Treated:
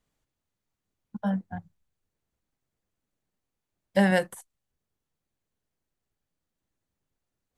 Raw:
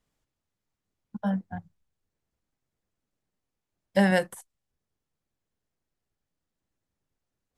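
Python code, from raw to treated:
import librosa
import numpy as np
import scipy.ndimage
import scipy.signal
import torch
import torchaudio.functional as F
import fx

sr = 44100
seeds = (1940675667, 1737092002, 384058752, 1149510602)

y = fx.notch(x, sr, hz=5200.0, q=21.0)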